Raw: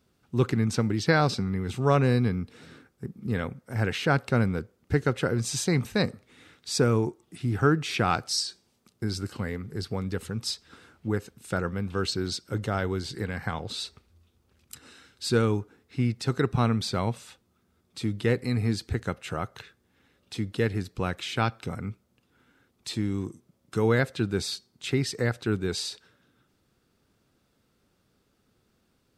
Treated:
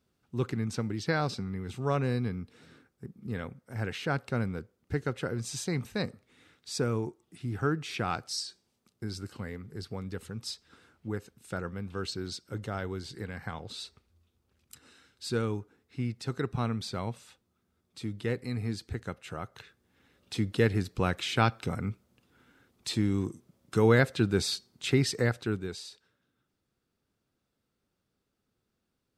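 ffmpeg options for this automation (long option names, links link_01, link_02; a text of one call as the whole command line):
ffmpeg -i in.wav -af "volume=1dB,afade=type=in:start_time=19.44:duration=0.91:silence=0.398107,afade=type=out:start_time=25.1:duration=0.69:silence=0.237137" out.wav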